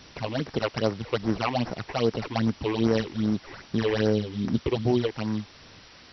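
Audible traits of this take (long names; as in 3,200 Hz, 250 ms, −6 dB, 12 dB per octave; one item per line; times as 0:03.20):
aliases and images of a low sample rate 3,500 Hz, jitter 20%
phaser sweep stages 8, 2.5 Hz, lowest notch 170–3,700 Hz
a quantiser's noise floor 8 bits, dither triangular
MP2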